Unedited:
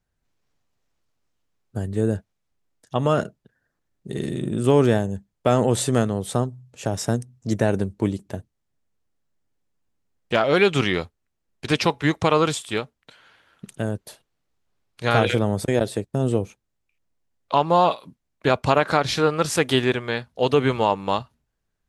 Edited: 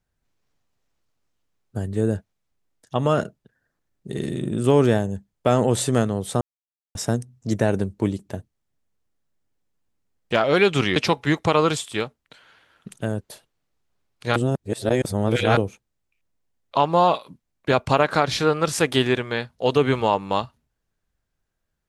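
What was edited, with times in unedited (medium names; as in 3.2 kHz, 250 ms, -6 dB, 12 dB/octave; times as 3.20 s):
6.41–6.95 s: mute
10.96–11.73 s: delete
15.13–16.34 s: reverse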